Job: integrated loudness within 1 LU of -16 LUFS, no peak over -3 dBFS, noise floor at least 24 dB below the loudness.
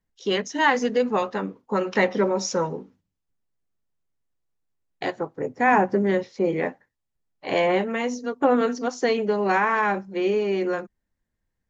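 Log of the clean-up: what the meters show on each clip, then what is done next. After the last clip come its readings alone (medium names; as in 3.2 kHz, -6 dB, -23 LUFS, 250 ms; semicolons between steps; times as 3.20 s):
loudness -23.5 LUFS; peak level -7.5 dBFS; loudness target -16.0 LUFS
-> trim +7.5 dB; peak limiter -3 dBFS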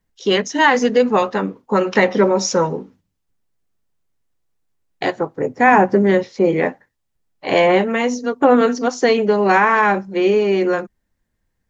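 loudness -16.5 LUFS; peak level -3.0 dBFS; noise floor -73 dBFS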